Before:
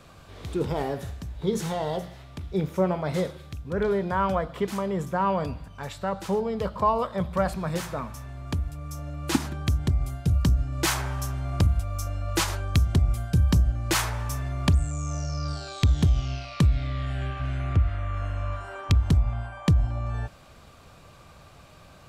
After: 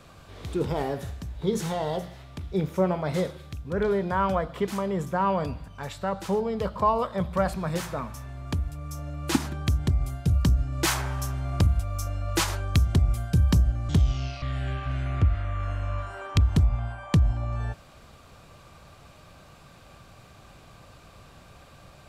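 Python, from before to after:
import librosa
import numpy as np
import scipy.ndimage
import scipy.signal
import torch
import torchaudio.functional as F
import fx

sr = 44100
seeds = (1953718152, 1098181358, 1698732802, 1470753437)

y = fx.edit(x, sr, fx.cut(start_s=13.89, length_s=2.08),
    fx.cut(start_s=16.5, length_s=0.46), tone=tone)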